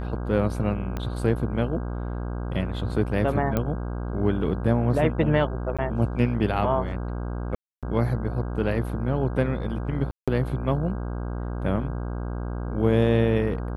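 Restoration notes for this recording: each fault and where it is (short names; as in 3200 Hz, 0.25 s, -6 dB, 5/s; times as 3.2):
buzz 60 Hz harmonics 27 -30 dBFS
0.97 pop -17 dBFS
3.57 pop -12 dBFS
5.77–5.79 gap 16 ms
7.55–7.83 gap 0.277 s
10.11–10.28 gap 0.166 s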